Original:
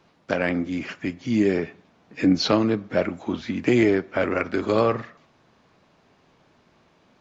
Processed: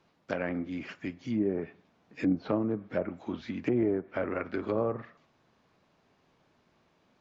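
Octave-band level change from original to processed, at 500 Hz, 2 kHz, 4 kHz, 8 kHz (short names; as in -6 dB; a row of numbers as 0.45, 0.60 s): -8.5 dB, -12.0 dB, -20.0 dB, n/a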